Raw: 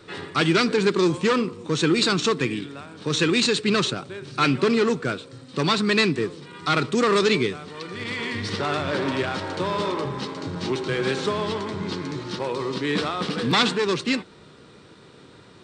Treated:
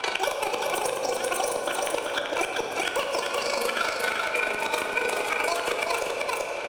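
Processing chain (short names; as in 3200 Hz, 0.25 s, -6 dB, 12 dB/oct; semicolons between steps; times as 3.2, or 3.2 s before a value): CVSD 64 kbps; low-pass opened by the level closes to 2000 Hz, open at -20 dBFS; tone controls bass -13 dB, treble -1 dB; notch 7600 Hz, Q 14; limiter -19.5 dBFS, peak gain reduction 9.5 dB; small resonant body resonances 210/640/1000 Hz, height 16 dB, ringing for 55 ms; chopper 11 Hz, depth 65%, duty 25%; flipped gate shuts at -15 dBFS, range -29 dB; on a send: echo 0.903 s -5 dB; on the sum: shoebox room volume 220 m³, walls hard, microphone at 0.35 m; speed mistake 33 rpm record played at 78 rpm; three-band squash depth 100%; gain +1 dB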